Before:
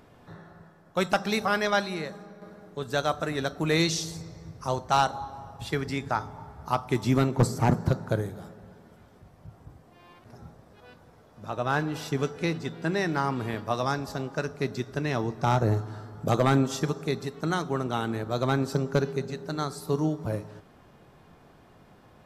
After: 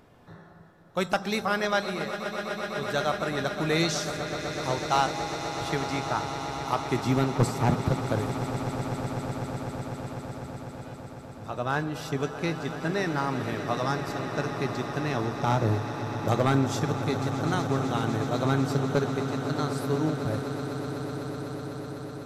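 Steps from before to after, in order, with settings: swelling echo 0.125 s, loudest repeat 8, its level -14 dB; gain -1.5 dB

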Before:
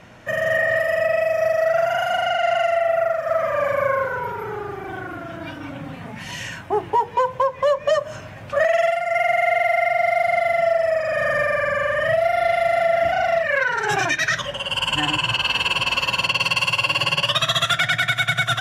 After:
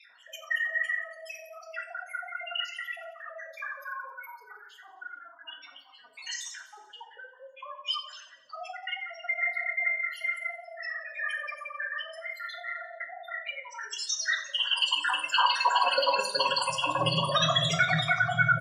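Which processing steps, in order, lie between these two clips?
random spectral dropouts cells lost 64%; 8.49–9.01 frequency shift +76 Hz; de-hum 168.7 Hz, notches 6; reverb removal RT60 0.69 s; fifteen-band EQ 160 Hz -7 dB, 2500 Hz -11 dB, 10000 Hz +3 dB; in parallel at 0 dB: limiter -21 dBFS, peak gain reduction 10 dB; on the sum: spectral gate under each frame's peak -15 dB strong; high-pass sweep 2700 Hz -> 170 Hz, 14.47–17.04; on a send: feedback echo 88 ms, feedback 59%, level -16 dB; on the sum: shoebox room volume 660 m³, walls furnished, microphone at 1.8 m; gain -3.5 dB

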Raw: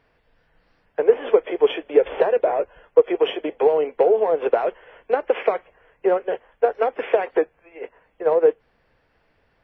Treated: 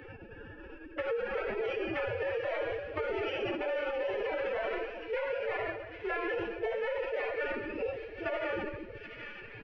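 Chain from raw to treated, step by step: Wiener smoothing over 41 samples; graphic EQ 125/250/500/1000/2000 Hz -6/+4/-8/-10/+9 dB; soft clip -17 dBFS, distortion -15 dB; low shelf 160 Hz -8.5 dB; reverse; compressor 16:1, threshold -37 dBFS, peak gain reduction 16.5 dB; reverse; elliptic low-pass 3200 Hz; doubler 17 ms -3.5 dB; shoebox room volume 350 m³, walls mixed, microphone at 1.7 m; formant-preserving pitch shift +11 st; limiter -30.5 dBFS, peak gain reduction 8.5 dB; on a send: thin delay 0.774 s, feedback 52%, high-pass 2500 Hz, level -12 dB; on the sum: three-band squash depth 70%; gain +5 dB

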